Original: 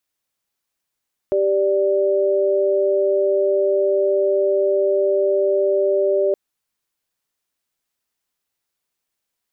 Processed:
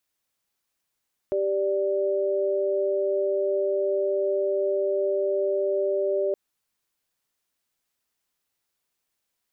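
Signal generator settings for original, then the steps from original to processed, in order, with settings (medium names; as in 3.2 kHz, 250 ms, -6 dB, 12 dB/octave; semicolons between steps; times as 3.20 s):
chord G4/D5 sine, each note -17.5 dBFS 5.02 s
peak limiter -18.5 dBFS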